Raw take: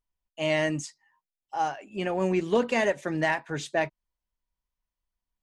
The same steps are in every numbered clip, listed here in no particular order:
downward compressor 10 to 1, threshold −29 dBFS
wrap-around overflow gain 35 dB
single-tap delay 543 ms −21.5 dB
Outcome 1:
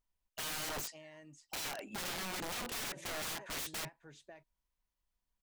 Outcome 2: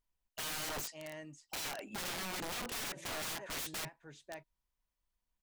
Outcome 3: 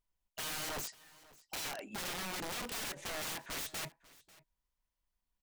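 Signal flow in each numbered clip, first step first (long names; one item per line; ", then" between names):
downward compressor, then single-tap delay, then wrap-around overflow
single-tap delay, then downward compressor, then wrap-around overflow
downward compressor, then wrap-around overflow, then single-tap delay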